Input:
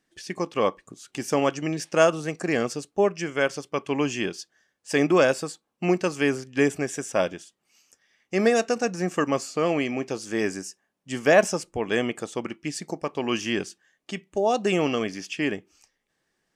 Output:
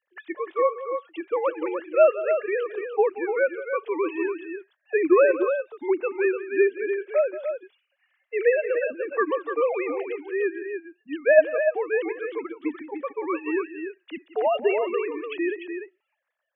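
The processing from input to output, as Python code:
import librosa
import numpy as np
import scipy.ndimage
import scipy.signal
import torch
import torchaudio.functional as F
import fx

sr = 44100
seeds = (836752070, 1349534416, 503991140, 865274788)

y = fx.sine_speech(x, sr)
y = fx.echo_multitap(y, sr, ms=(178, 296), db=(-15.0, -7.5))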